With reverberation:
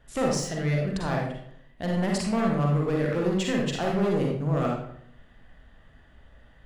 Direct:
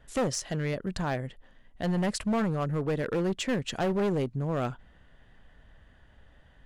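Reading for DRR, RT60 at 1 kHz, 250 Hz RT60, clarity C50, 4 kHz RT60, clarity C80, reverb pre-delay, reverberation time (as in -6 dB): -2.0 dB, 0.65 s, 0.80 s, 1.0 dB, 0.45 s, 5.5 dB, 39 ms, 0.70 s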